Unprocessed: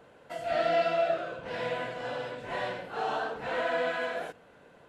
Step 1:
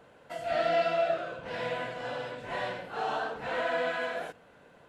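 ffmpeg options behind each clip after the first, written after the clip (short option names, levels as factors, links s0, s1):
-af "equalizer=f=390:w=1.5:g=-2"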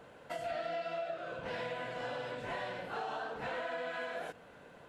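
-af "acompressor=threshold=0.0126:ratio=6,volume=1.19"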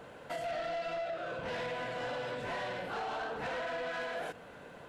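-af "asoftclip=type=tanh:threshold=0.0133,volume=1.78"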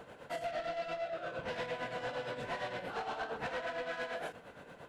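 -af "tremolo=f=8.7:d=0.61,volume=1.12"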